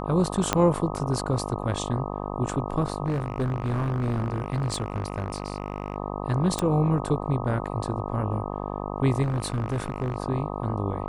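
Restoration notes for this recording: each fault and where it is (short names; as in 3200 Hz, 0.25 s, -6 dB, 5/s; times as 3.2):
buzz 50 Hz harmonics 25 -32 dBFS
0.53 pop -5 dBFS
3.06–5.96 clipped -22 dBFS
6.59 pop -12 dBFS
9.22–10.16 clipped -22.5 dBFS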